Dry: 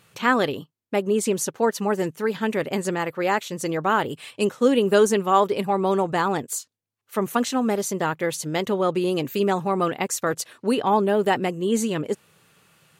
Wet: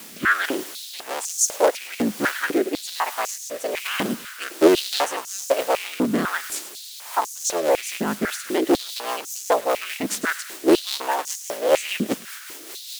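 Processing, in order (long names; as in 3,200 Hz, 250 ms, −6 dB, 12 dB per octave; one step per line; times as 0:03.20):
sub-harmonics by changed cycles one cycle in 3, inverted
bit-depth reduction 6 bits, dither triangular
rotating-speaker cabinet horn 1.2 Hz, later 5 Hz, at 0:06.84
delay with a high-pass on its return 105 ms, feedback 63%, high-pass 1,700 Hz, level −13.5 dB
high-pass on a step sequencer 4 Hz 210–6,400 Hz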